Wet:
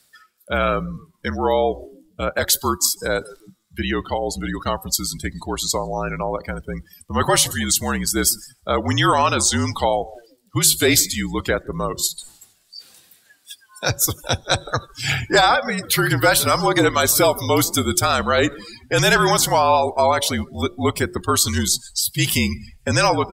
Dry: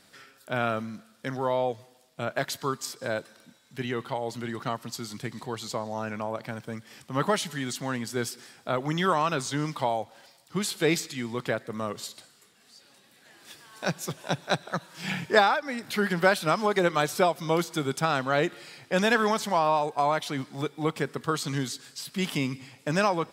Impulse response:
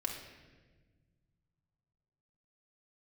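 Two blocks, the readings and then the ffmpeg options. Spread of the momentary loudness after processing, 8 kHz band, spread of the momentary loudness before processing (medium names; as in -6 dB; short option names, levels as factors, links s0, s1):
11 LU, +18.0 dB, 12 LU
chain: -filter_complex "[0:a]aemphasis=mode=production:type=75kf,asplit=6[s0][s1][s2][s3][s4][s5];[s1]adelay=155,afreqshift=-91,volume=0.0794[s6];[s2]adelay=310,afreqshift=-182,volume=0.0519[s7];[s3]adelay=465,afreqshift=-273,volume=0.0335[s8];[s4]adelay=620,afreqshift=-364,volume=0.0219[s9];[s5]adelay=775,afreqshift=-455,volume=0.0141[s10];[s0][s6][s7][s8][s9][s10]amix=inputs=6:normalize=0,apsyclip=5.62,bandreject=f=204:t=h:w=4,bandreject=f=408:t=h:w=4,bandreject=f=612:t=h:w=4,bandreject=f=816:t=h:w=4,bandreject=f=1020:t=h:w=4,bandreject=f=1224:t=h:w=4,afreqshift=-50,afftdn=nr=26:nf=-22,areverse,acompressor=mode=upward:threshold=0.0631:ratio=2.5,areverse,volume=0.447"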